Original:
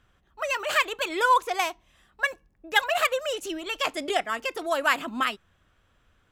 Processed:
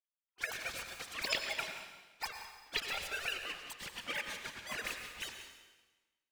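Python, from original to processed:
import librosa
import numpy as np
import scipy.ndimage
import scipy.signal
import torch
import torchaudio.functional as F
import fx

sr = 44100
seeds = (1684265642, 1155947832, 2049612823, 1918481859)

p1 = fx.sine_speech(x, sr)
p2 = fx.lowpass(p1, sr, hz=1200.0, slope=6)
p3 = fx.low_shelf(p2, sr, hz=260.0, db=-11.5)
p4 = fx.leveller(p3, sr, passes=2)
p5 = fx.over_compress(p4, sr, threshold_db=-20.0, ratio=-0.5)
p6 = p4 + (p5 * librosa.db_to_amplitude(1.5))
p7 = fx.spec_gate(p6, sr, threshold_db=-25, keep='weak')
p8 = p7 + fx.echo_single(p7, sr, ms=181, db=-14.0, dry=0)
p9 = fx.rev_plate(p8, sr, seeds[0], rt60_s=1.2, hf_ratio=0.95, predelay_ms=80, drr_db=5.5)
y = p9 * librosa.db_to_amplitude(-2.0)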